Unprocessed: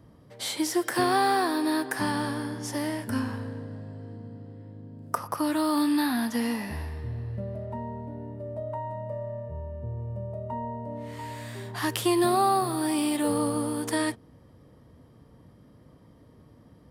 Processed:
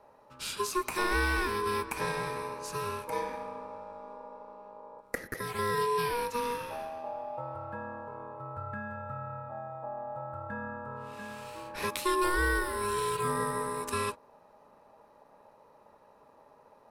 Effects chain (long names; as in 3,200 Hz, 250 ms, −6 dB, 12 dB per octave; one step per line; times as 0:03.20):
0:05.00–0:05.59: parametric band 160 Hz −14.5 dB 2 octaves
ring modulation 720 Hz
level −2 dB